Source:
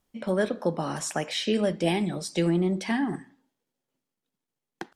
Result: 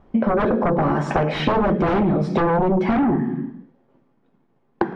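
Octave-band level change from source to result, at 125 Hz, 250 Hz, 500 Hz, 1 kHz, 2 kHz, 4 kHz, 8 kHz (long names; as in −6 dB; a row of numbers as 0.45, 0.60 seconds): +8.0 dB, +8.0 dB, +7.5 dB, +13.5 dB, +6.0 dB, −2.0 dB, below −10 dB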